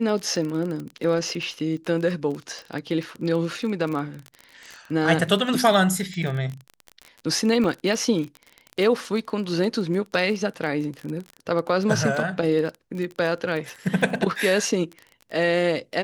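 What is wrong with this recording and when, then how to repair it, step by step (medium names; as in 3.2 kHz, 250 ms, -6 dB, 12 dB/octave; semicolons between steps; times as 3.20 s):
crackle 24 per s -28 dBFS
1.59–1.60 s: dropout 7 ms
7.64 s: dropout 2.6 ms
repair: de-click; interpolate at 1.59 s, 7 ms; interpolate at 7.64 s, 2.6 ms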